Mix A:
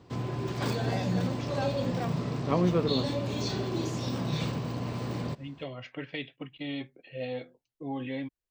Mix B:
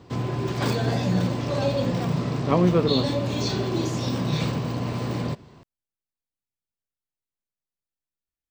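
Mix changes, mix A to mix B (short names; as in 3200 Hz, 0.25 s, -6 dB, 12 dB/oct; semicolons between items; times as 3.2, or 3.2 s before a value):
second voice: muted; background +6.0 dB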